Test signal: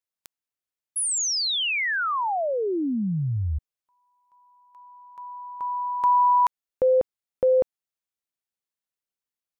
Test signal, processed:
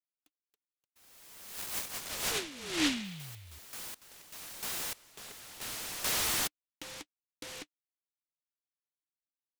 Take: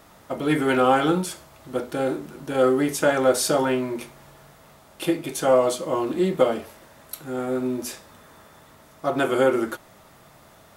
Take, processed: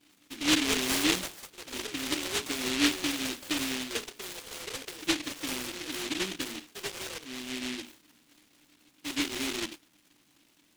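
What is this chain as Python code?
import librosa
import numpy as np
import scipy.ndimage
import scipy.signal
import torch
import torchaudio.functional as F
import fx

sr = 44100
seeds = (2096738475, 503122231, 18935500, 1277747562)

y = fx.vibrato(x, sr, rate_hz=0.34, depth_cents=19.0)
y = fx.vowel_filter(y, sr, vowel='u')
y = fx.echo_pitch(y, sr, ms=354, semitones=6, count=3, db_per_echo=-6.0)
y = fx.noise_mod_delay(y, sr, seeds[0], noise_hz=2800.0, depth_ms=0.45)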